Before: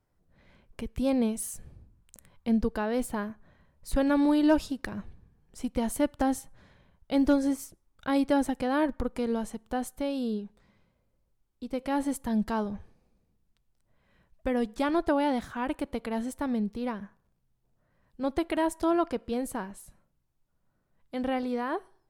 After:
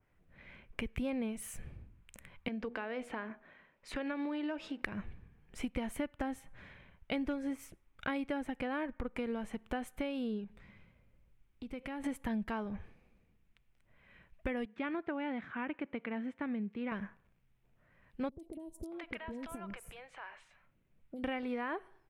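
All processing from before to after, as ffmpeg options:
ffmpeg -i in.wav -filter_complex "[0:a]asettb=1/sr,asplit=3[link_01][link_02][link_03];[link_01]atrim=end=2.484[link_04];[link_02]atrim=start=2.48:end=4.82,asetpts=PTS-STARTPTS,afade=type=in:duration=0.004:curve=qsin,afade=type=out:start_time=2.336:duration=0.004:curve=qsin,acrossover=split=220 7200:gain=0.1 1 0.112[link_05][link_06][link_07];[link_05][link_06][link_07]amix=inputs=3:normalize=0,acompressor=threshold=-39dB:ratio=2:attack=3.2:release=140:knee=1:detection=peak,bandreject=frequency=80.05:width_type=h:width=4,bandreject=frequency=160.1:width_type=h:width=4,bandreject=frequency=240.15:width_type=h:width=4,bandreject=frequency=320.2:width_type=h:width=4,bandreject=frequency=400.25:width_type=h:width=4,bandreject=frequency=480.3:width_type=h:width=4,bandreject=frequency=560.35:width_type=h:width=4,bandreject=frequency=640.4:width_type=h:width=4,bandreject=frequency=720.45:width_type=h:width=4,bandreject=frequency=800.5:width_type=h:width=4,bandreject=frequency=880.55:width_type=h:width=4[link_08];[link_03]atrim=start=4.816[link_09];[link_04][link_08]acrossfade=duration=0.004:curve1=hsin:curve2=qsin[link_10];[link_10][link_09]acrossfade=duration=0.004:curve1=qsin:curve2=hsin,asettb=1/sr,asplit=3[link_11][link_12][link_13];[link_11]atrim=end=10.444[link_14];[link_12]atrim=start=10.44:end=12.04,asetpts=PTS-STARTPTS,afade=type=in:duration=0.004:curve=qsin,afade=type=out:start_time=1.596:duration=0.004:curve=qsin,bass=frequency=250:gain=6,treble=frequency=4000:gain=1,acompressor=threshold=-45dB:ratio=3:attack=3.2:release=140:knee=1:detection=peak[link_15];[link_13]atrim=start=12.036[link_16];[link_14][link_15]acrossfade=duration=0.004:curve1=hsin:curve2=qsin[link_17];[link_17][link_16]acrossfade=duration=0.004:curve1=qsin:curve2=hsin,asettb=1/sr,asplit=3[link_18][link_19][link_20];[link_18]atrim=end=14.654[link_21];[link_19]atrim=start=14.65:end=16.92,asetpts=PTS-STARTPTS,afade=type=in:duration=0.004:curve=qsin,afade=type=out:start_time=2.266:duration=0.004:curve=qsin,highpass=200,lowpass=2100,equalizer=frequency=740:width_type=o:width=2.5:gain=-9[link_22];[link_20]atrim=start=16.916[link_23];[link_21][link_22]acrossfade=duration=0.004:curve1=hsin:curve2=qsin[link_24];[link_24][link_23]acrossfade=duration=0.004:curve1=qsin:curve2=hsin,asettb=1/sr,asplit=3[link_25][link_26][link_27];[link_25]atrim=end=18.294[link_28];[link_26]atrim=start=18.29:end=21.24,asetpts=PTS-STARTPTS,afade=type=in:duration=0.004:curve=qsin,afade=type=out:start_time=2.946:duration=0.004:curve=qsin,acompressor=threshold=-39dB:ratio=20:attack=3.2:release=140:knee=1:detection=peak,acrossover=split=580|5600[link_29][link_30][link_31];[link_31]adelay=30[link_32];[link_30]adelay=630[link_33];[link_29][link_33][link_32]amix=inputs=3:normalize=0,atrim=end_sample=130095[link_34];[link_27]atrim=start=21.236[link_35];[link_28][link_34]acrossfade=duration=0.004:curve1=hsin:curve2=qsin[link_36];[link_36][link_35]acrossfade=duration=0.004:curve1=qsin:curve2=hsin,firequalizer=gain_entry='entry(880,0);entry(2300,11);entry(4400,-6)':delay=0.05:min_phase=1,acompressor=threshold=-35dB:ratio=6,adynamicequalizer=threshold=0.002:dfrequency=2200:dqfactor=0.7:tfrequency=2200:tqfactor=0.7:attack=5:release=100:ratio=0.375:range=2:mode=cutabove:tftype=highshelf,volume=1dB" out.wav

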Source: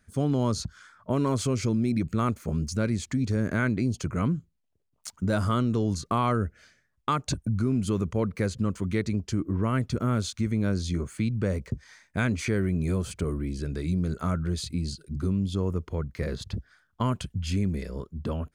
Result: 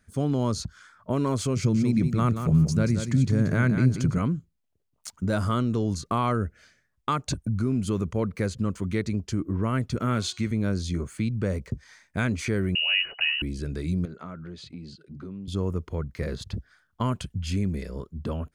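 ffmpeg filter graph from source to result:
ffmpeg -i in.wav -filter_complex "[0:a]asettb=1/sr,asplit=3[link_01][link_02][link_03];[link_01]atrim=end=1.564[link_04];[link_02]atrim=start=1.56:end=4.18,asetpts=PTS-STARTPTS,afade=type=in:duration=0.004:curve=qsin,afade=type=out:start_time=2.616:duration=0.004:curve=qsin,equalizer=frequency=150:width_type=o:width=0.49:gain=13,aecho=1:1:181|362|543:0.398|0.0677|0.0115,atrim=end_sample=115542[link_05];[link_03]atrim=start=4.176[link_06];[link_04][link_05]acrossfade=duration=0.004:curve1=hsin:curve2=qsin[link_07];[link_07][link_06]acrossfade=duration=0.004:curve1=qsin:curve2=hsin,asettb=1/sr,asplit=3[link_08][link_09][link_10];[link_08]atrim=end=9.974[link_11];[link_09]atrim=start=9.97:end=10.51,asetpts=PTS-STARTPTS,afade=type=in:duration=0.004:curve=qsin,afade=type=out:start_time=0.536:duration=0.004:curve=qsin,highpass=85,equalizer=frequency=2600:width_type=o:width=2.1:gain=6.5,bandreject=frequency=364.7:width_type=h:width=4,bandreject=frequency=729.4:width_type=h:width=4,bandreject=frequency=1094.1:width_type=h:width=4,bandreject=frequency=1458.8:width_type=h:width=4,bandreject=frequency=1823.5:width_type=h:width=4,bandreject=frequency=2188.2:width_type=h:width=4,bandreject=frequency=2552.9:width_type=h:width=4,bandreject=frequency=2917.6:width_type=h:width=4,bandreject=frequency=3282.3:width_type=h:width=4,bandreject=frequency=3647:width_type=h:width=4,bandreject=frequency=4011.7:width_type=h:width=4,bandreject=frequency=4376.4:width_type=h:width=4,bandreject=frequency=4741.1:width_type=h:width=4,bandreject=frequency=5105.8:width_type=h:width=4,bandreject=frequency=5470.5:width_type=h:width=4,bandreject=frequency=5835.2:width_type=h:width=4,bandreject=frequency=6199.9:width_type=h:width=4,bandreject=frequency=6564.6:width_type=h:width=4,bandreject=frequency=6929.3:width_type=h:width=4,bandreject=frequency=7294:width_type=h:width=4,bandreject=frequency=7658.7:width_type=h:width=4,bandreject=frequency=8023.4:width_type=h:width=4,bandreject=frequency=8388.1:width_type=h:width=4,bandreject=frequency=8752.8:width_type=h:width=4,bandreject=frequency=9117.5:width_type=h:width=4[link_12];[link_10]atrim=start=10.506[link_13];[link_11][link_12]acrossfade=duration=0.004:curve1=hsin:curve2=qsin[link_14];[link_14][link_13]acrossfade=duration=0.004:curve1=qsin:curve2=hsin,asettb=1/sr,asplit=3[link_15][link_16][link_17];[link_15]atrim=end=12.754[link_18];[link_16]atrim=start=12.75:end=13.42,asetpts=PTS-STARTPTS,afade=type=in:duration=0.004:curve=qsin,afade=type=out:start_time=0.666:duration=0.004:curve=qsin,equalizer=frequency=840:width_type=o:width=1.9:gain=11.5,acompressor=mode=upward:threshold=-33dB:ratio=2.5:attack=3.2:release=140:knee=2.83:detection=peak,lowpass=frequency=2600:width_type=q:width=0.5098,lowpass=frequency=2600:width_type=q:width=0.6013,lowpass=frequency=2600:width_type=q:width=0.9,lowpass=frequency=2600:width_type=q:width=2.563,afreqshift=-3000[link_19];[link_17]atrim=start=13.416[link_20];[link_18][link_19]acrossfade=duration=0.004:curve1=hsin:curve2=qsin[link_21];[link_21][link_20]acrossfade=duration=0.004:curve1=qsin:curve2=hsin,asettb=1/sr,asplit=3[link_22][link_23][link_24];[link_22]atrim=end=14.054[link_25];[link_23]atrim=start=14.05:end=15.48,asetpts=PTS-STARTPTS,afade=type=in:duration=0.004:curve=qsin,afade=type=out:start_time=1.426:duration=0.004:curve=qsin,highpass=160,lowpass=3400,acompressor=threshold=-41dB:ratio=2:attack=3.2:release=140:knee=1:detection=peak[link_26];[link_24]atrim=start=15.476[link_27];[link_25][link_26]acrossfade=duration=0.004:curve1=hsin:curve2=qsin[link_28];[link_28][link_27]acrossfade=duration=0.004:curve1=qsin:curve2=hsin" out.wav

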